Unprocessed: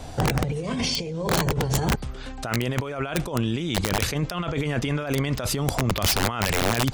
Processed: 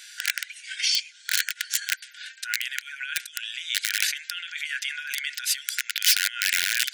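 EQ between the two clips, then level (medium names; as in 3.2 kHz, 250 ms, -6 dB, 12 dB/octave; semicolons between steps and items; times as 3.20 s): brick-wall FIR high-pass 1.4 kHz; +4.0 dB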